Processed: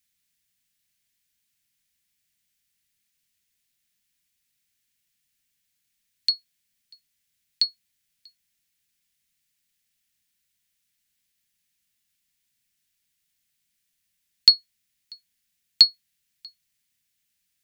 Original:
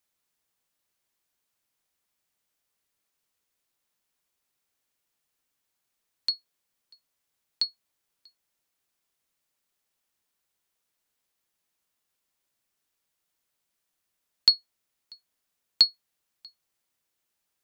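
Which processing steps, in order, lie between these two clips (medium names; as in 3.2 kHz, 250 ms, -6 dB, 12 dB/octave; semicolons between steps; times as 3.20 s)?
high-order bell 640 Hz -16 dB 2.4 oct; trim +5 dB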